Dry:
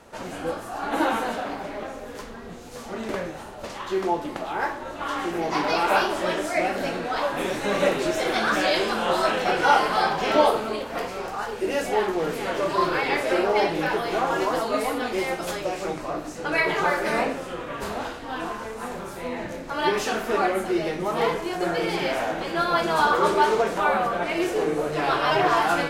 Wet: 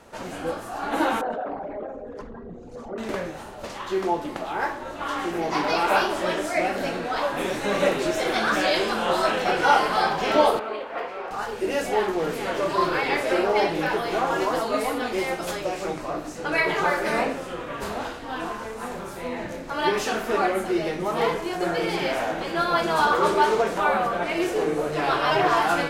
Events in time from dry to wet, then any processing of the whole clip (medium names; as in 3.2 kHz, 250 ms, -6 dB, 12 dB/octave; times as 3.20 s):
1.21–2.98 s: resonances exaggerated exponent 2
10.59–11.31 s: three-band isolator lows -17 dB, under 340 Hz, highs -20 dB, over 3.2 kHz
22.93–23.38 s: hard clipper -12 dBFS